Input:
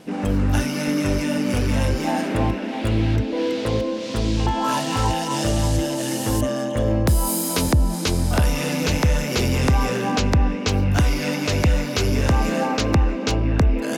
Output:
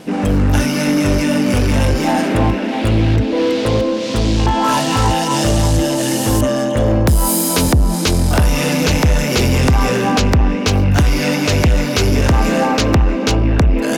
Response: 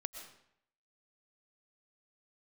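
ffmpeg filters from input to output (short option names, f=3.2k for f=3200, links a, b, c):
-af "asoftclip=type=tanh:threshold=-15.5dB,volume=8.5dB"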